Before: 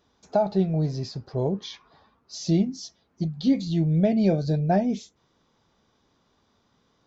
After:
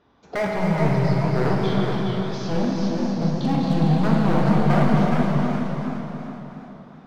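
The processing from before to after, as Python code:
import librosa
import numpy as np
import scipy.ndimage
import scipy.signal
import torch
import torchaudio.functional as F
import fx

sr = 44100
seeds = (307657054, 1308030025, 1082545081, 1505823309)

p1 = scipy.signal.sosfilt(scipy.signal.butter(2, 2500.0, 'lowpass', fs=sr, output='sos'), x)
p2 = fx.low_shelf(p1, sr, hz=61.0, db=-8.0)
p3 = fx.over_compress(p2, sr, threshold_db=-26.0, ratio=-0.5)
p4 = p2 + F.gain(torch.from_numpy(p3), 0.0).numpy()
p5 = 10.0 ** (-17.5 / 20.0) * (np.abs((p4 / 10.0 ** (-17.5 / 20.0) + 3.0) % 4.0 - 2.0) - 1.0)
p6 = p5 + fx.echo_feedback(p5, sr, ms=266, feedback_pct=51, wet_db=-7.5, dry=0)
p7 = fx.rev_plate(p6, sr, seeds[0], rt60_s=3.9, hf_ratio=0.75, predelay_ms=0, drr_db=-2.5)
p8 = fx.echo_warbled(p7, sr, ms=419, feedback_pct=30, rate_hz=2.8, cents=119, wet_db=-5.5)
y = F.gain(torch.from_numpy(p8), -2.0).numpy()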